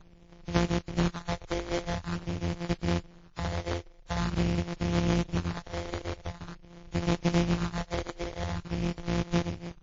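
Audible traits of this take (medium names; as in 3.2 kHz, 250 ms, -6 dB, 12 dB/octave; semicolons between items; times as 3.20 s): a buzz of ramps at a fixed pitch in blocks of 256 samples; phasing stages 4, 0.46 Hz, lowest notch 180–2700 Hz; aliases and images of a low sample rate 2.7 kHz, jitter 20%; WMA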